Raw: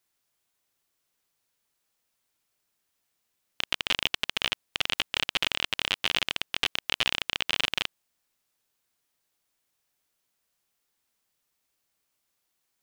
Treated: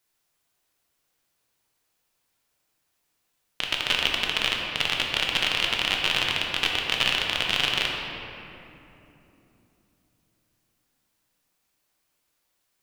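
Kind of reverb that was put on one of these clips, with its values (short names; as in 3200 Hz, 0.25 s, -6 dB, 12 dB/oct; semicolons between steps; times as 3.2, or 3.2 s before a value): shoebox room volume 150 m³, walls hard, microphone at 0.48 m; gain +1.5 dB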